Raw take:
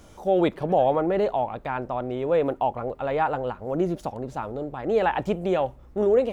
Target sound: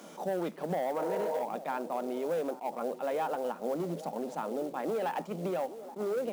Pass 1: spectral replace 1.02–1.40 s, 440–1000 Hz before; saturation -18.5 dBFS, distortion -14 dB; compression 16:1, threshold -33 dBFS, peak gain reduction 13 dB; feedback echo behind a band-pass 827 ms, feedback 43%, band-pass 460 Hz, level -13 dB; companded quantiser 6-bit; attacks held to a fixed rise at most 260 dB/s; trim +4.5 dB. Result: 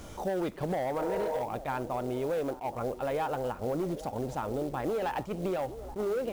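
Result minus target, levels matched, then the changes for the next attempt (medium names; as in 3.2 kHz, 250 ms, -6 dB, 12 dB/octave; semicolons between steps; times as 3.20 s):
125 Hz band +5.0 dB
add after compression: rippled Chebyshev high-pass 160 Hz, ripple 3 dB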